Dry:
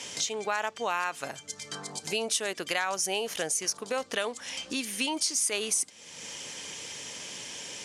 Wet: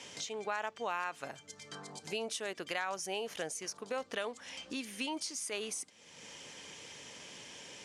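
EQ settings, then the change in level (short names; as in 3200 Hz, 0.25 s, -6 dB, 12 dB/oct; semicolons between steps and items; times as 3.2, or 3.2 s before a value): high shelf 4600 Hz -9 dB; -6.0 dB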